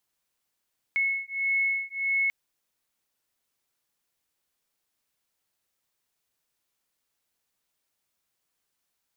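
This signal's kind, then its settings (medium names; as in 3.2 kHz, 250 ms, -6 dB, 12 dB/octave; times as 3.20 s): beating tones 2.19 kHz, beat 1.6 Hz, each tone -27.5 dBFS 1.34 s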